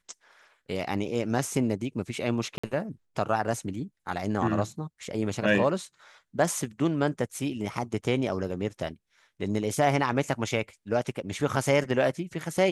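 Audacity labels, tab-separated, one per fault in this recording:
2.580000	2.630000	drop-out 55 ms

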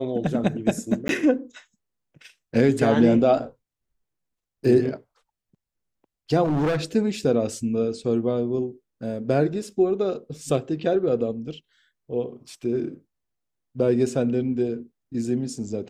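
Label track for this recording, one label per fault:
1.080000	1.090000	drop-out
6.440000	6.770000	clipping −19.5 dBFS

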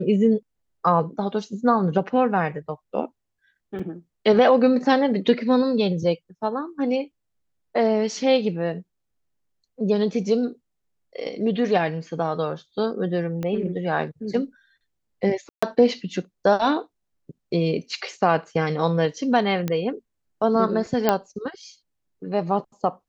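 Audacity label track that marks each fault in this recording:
3.790000	3.800000	drop-out 5.4 ms
13.430000	13.430000	click −17 dBFS
15.490000	15.620000	drop-out 135 ms
19.680000	19.680000	click −13 dBFS
21.090000	21.090000	click −5 dBFS

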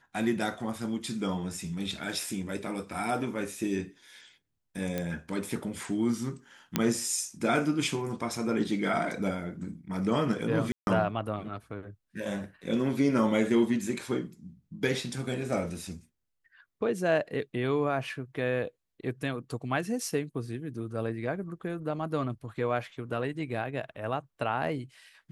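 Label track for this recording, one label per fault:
4.980000	4.980000	click −17 dBFS
6.760000	6.760000	click −9 dBFS
10.720000	10.870000	drop-out 151 ms

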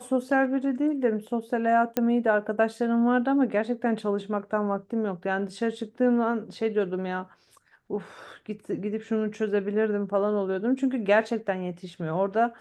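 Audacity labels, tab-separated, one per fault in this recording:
1.970000	1.970000	click −11 dBFS

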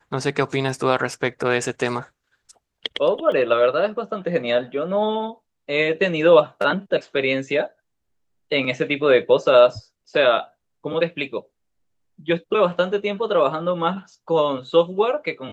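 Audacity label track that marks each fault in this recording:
3.320000	3.320000	drop-out 2.1 ms

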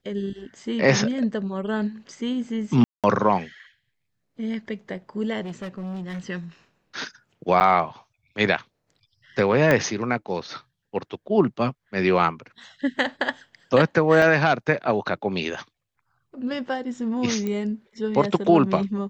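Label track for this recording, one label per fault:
2.840000	3.040000	drop-out 197 ms
5.450000	6.200000	clipping −29 dBFS
7.600000	7.610000	drop-out 8.8 ms
9.710000	9.710000	click −7 dBFS
14.220000	14.220000	drop-out 2.9 ms
17.470000	17.470000	click −16 dBFS

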